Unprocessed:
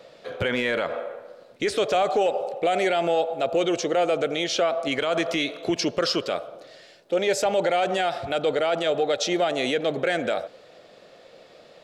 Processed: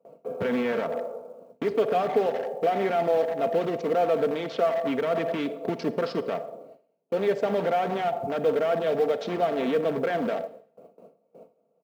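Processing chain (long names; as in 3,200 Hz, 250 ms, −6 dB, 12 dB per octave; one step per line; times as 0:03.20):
adaptive Wiener filter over 25 samples
in parallel at −5 dB: wrap-around overflow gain 25 dB
on the sum: head-to-tape spacing loss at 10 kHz 34 dB
comb filter 4.4 ms, depth 50%
log-companded quantiser 8 bits
noise gate with hold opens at −38 dBFS
high-pass filter 110 Hz 24 dB per octave
convolution reverb RT60 0.50 s, pre-delay 38 ms, DRR 14.5 dB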